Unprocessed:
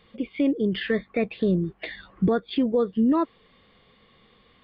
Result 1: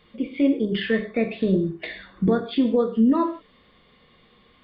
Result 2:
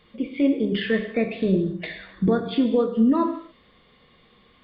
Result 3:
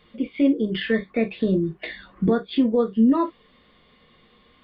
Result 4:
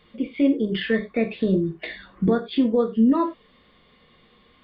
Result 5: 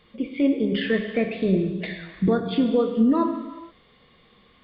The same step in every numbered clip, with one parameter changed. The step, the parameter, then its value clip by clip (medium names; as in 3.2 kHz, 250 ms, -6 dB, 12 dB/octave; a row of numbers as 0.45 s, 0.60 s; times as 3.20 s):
gated-style reverb, gate: 190 ms, 300 ms, 80 ms, 120 ms, 500 ms